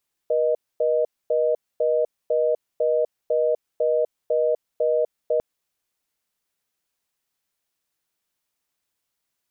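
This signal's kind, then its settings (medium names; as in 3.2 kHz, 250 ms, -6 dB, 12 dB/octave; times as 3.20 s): call progress tone reorder tone, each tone -20.5 dBFS 5.10 s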